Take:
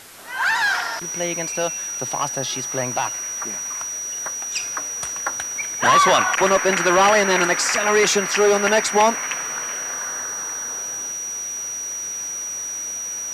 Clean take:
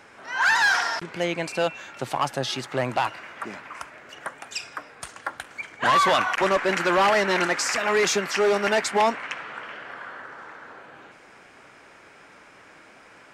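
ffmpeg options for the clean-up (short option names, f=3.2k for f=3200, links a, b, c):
-af "bandreject=f=5.8k:w=30,afwtdn=0.0079,asetnsamples=n=441:p=0,asendcmd='4.54 volume volume -4.5dB',volume=0dB"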